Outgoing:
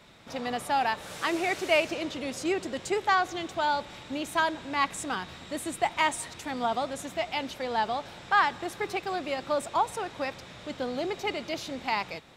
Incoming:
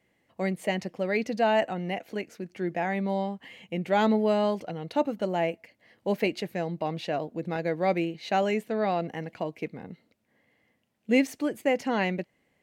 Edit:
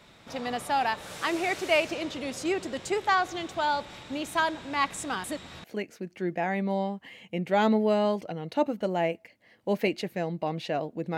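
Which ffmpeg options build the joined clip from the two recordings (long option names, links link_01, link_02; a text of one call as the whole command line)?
ffmpeg -i cue0.wav -i cue1.wav -filter_complex "[0:a]apad=whole_dur=11.17,atrim=end=11.17,asplit=2[link_01][link_02];[link_01]atrim=end=5.242[link_03];[link_02]atrim=start=5.238:end=5.642,asetpts=PTS-STARTPTS,areverse[link_04];[1:a]atrim=start=2.028:end=7.56[link_05];[link_03][link_04]acrossfade=duration=0.004:curve1=hsin:curve2=hsin[link_06];[link_06][link_05]acrossfade=duration=0.004:curve1=hsin:curve2=hsin" out.wav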